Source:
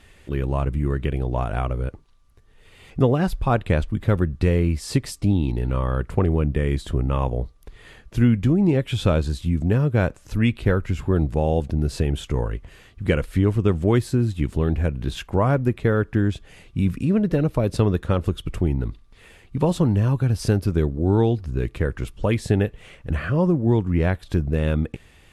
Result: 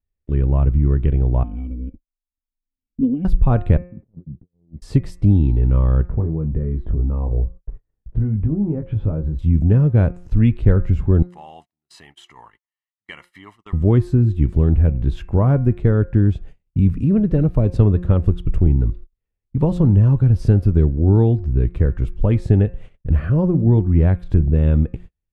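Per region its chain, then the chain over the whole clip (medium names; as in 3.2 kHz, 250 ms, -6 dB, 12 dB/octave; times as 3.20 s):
1.43–3.25 s: cascade formant filter i + comb 4 ms, depth 79%
3.77–4.82 s: ladder band-pass 230 Hz, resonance 25% + compressor with a negative ratio -42 dBFS
6.09–9.39 s: low-pass 1.2 kHz + compression 2.5:1, threshold -25 dBFS + doubling 19 ms -5 dB
11.22–13.73 s: high-pass 1.3 kHz + comb 1 ms, depth 75%
whole clip: de-hum 177.5 Hz, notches 15; gate -41 dBFS, range -39 dB; tilt EQ -3.5 dB/octave; trim -4 dB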